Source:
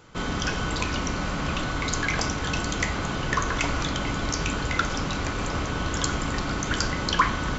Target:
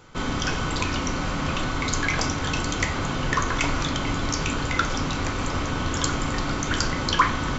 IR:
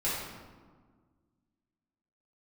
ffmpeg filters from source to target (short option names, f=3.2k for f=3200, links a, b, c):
-filter_complex "[0:a]asplit=2[a][b];[1:a]atrim=start_sample=2205,atrim=end_sample=3087,asetrate=66150,aresample=44100[c];[b][c]afir=irnorm=-1:irlink=0,volume=-10dB[d];[a][d]amix=inputs=2:normalize=0"